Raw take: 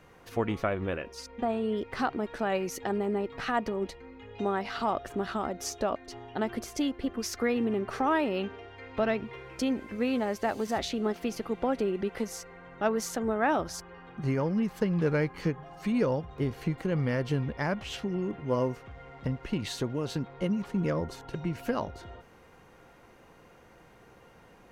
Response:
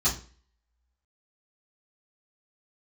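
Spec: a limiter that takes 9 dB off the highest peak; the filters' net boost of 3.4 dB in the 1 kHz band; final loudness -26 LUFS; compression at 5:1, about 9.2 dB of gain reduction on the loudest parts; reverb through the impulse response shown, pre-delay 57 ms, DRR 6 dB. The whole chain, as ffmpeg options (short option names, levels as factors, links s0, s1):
-filter_complex "[0:a]equalizer=f=1000:t=o:g=4.5,acompressor=threshold=0.0282:ratio=5,alimiter=level_in=1.5:limit=0.0631:level=0:latency=1,volume=0.668,asplit=2[s0][s1];[1:a]atrim=start_sample=2205,adelay=57[s2];[s1][s2]afir=irnorm=-1:irlink=0,volume=0.15[s3];[s0][s3]amix=inputs=2:normalize=0,volume=3.35"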